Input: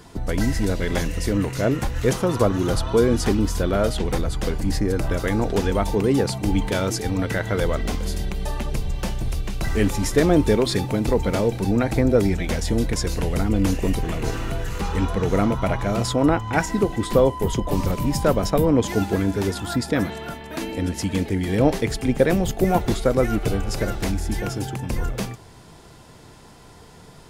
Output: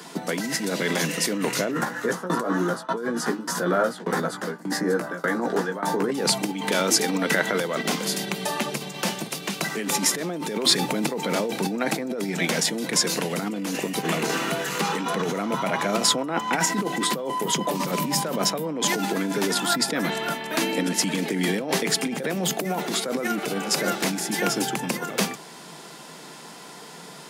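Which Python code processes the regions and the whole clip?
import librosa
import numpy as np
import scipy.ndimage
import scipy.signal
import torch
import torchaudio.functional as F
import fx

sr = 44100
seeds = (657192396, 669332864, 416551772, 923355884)

y = fx.chain(x, sr, fx.high_shelf_res(hz=2000.0, db=-6.0, q=3.0),
    fx.tremolo_shape(shape='saw_down', hz=1.7, depth_pct=95),
    fx.doubler(ms=17.0, db=-4.0), at=(1.71, 6.12))
y = fx.over_compress(y, sr, threshold_db=-24.0, ratio=-1.0)
y = scipy.signal.sosfilt(scipy.signal.butter(12, 150.0, 'highpass', fs=sr, output='sos'), y)
y = fx.tilt_shelf(y, sr, db=-3.5, hz=770.0)
y = y * 10.0 ** (3.0 / 20.0)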